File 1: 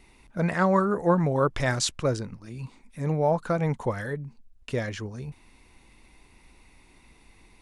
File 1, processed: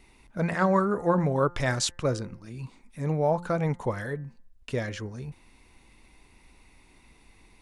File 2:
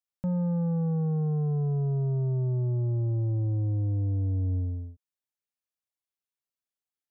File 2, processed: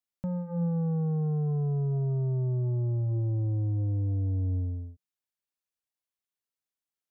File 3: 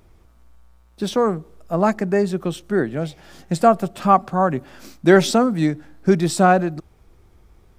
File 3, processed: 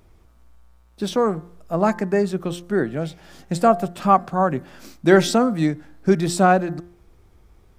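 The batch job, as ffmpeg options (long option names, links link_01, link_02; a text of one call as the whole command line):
ffmpeg -i in.wav -af "bandreject=frequency=174.7:width_type=h:width=4,bandreject=frequency=349.4:width_type=h:width=4,bandreject=frequency=524.1:width_type=h:width=4,bandreject=frequency=698.8:width_type=h:width=4,bandreject=frequency=873.5:width_type=h:width=4,bandreject=frequency=1048.2:width_type=h:width=4,bandreject=frequency=1222.9:width_type=h:width=4,bandreject=frequency=1397.6:width_type=h:width=4,bandreject=frequency=1572.3:width_type=h:width=4,bandreject=frequency=1747:width_type=h:width=4,bandreject=frequency=1921.7:width_type=h:width=4,bandreject=frequency=2096.4:width_type=h:width=4,volume=-1dB" out.wav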